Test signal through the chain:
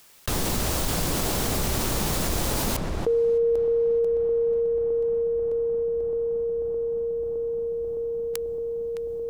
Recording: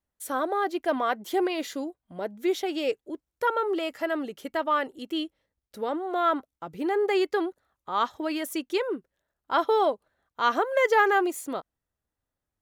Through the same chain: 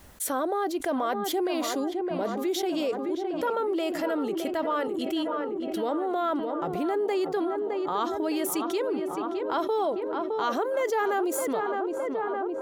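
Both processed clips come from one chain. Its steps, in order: dynamic bell 2 kHz, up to -7 dB, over -41 dBFS, Q 0.75; on a send: filtered feedback delay 613 ms, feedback 73%, low-pass 2.1 kHz, level -10.5 dB; on the sum: level flattener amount 70%; trim -5 dB

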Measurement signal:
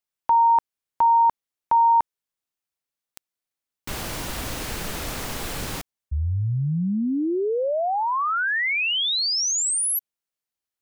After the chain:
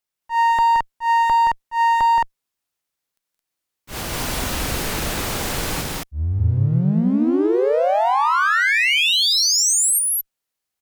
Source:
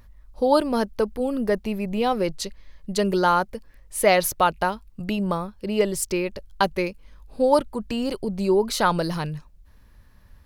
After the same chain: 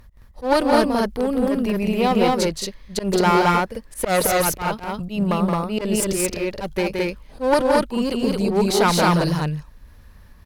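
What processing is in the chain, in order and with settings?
one-sided clip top -23 dBFS, bottom -8 dBFS; slow attack 105 ms; loudspeakers at several distances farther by 59 m -5 dB, 75 m -1 dB; trim +3.5 dB

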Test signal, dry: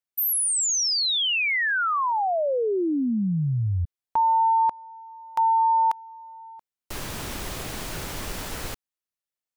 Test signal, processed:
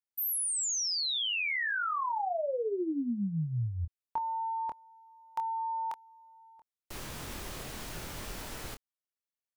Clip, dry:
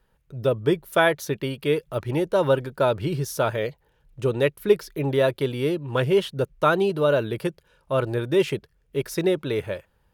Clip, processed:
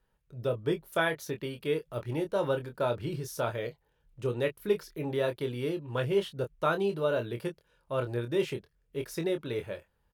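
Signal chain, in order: doubling 25 ms -7 dB; trim -9 dB

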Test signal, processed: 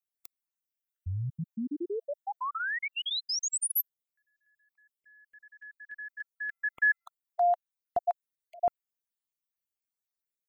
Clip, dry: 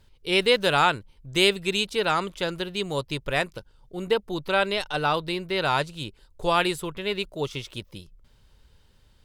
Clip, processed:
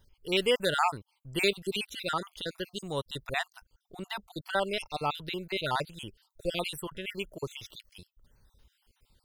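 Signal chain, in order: random holes in the spectrogram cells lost 49%; treble shelf 11 kHz +12 dB; trim -5 dB

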